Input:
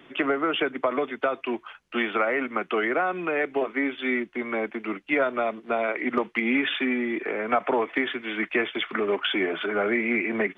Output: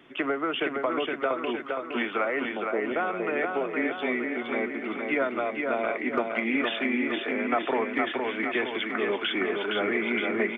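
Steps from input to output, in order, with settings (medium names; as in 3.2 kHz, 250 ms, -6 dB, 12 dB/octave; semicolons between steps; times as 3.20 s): 2.45–2.96 s: steep low-pass 970 Hz 96 dB/octave; on a send: feedback delay 465 ms, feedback 55%, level -4 dB; on the sum: trim -3.5 dB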